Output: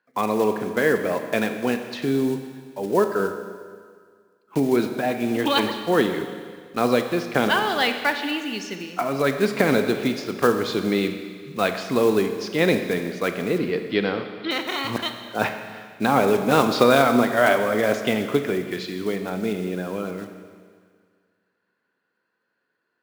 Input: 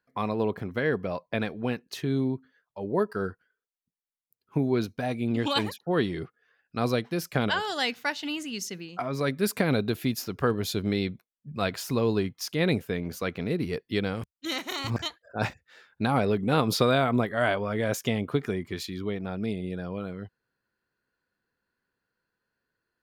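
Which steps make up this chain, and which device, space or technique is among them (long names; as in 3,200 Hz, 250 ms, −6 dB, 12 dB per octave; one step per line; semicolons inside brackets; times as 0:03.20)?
early digital voice recorder (band-pass filter 230–3,500 Hz; one scale factor per block 5 bits)
0:13.58–0:14.51: Butterworth low-pass 5,200 Hz 96 dB per octave
four-comb reverb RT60 1.9 s, combs from 29 ms, DRR 7 dB
level +7 dB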